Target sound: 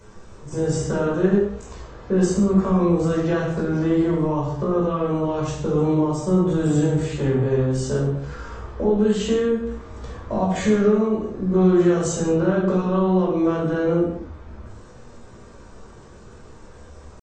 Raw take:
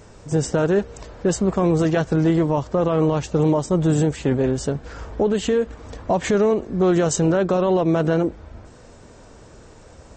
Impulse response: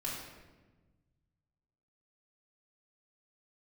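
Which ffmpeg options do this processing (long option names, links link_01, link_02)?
-filter_complex "[0:a]equalizer=frequency=1200:width=6.1:gain=9.5,acrossover=split=270[link_01][link_02];[link_02]acompressor=threshold=-20dB:ratio=8[link_03];[link_01][link_03]amix=inputs=2:normalize=0,atempo=0.59[link_04];[1:a]atrim=start_sample=2205,afade=type=out:start_time=0.4:duration=0.01,atrim=end_sample=18081,asetrate=61740,aresample=44100[link_05];[link_04][link_05]afir=irnorm=-1:irlink=0"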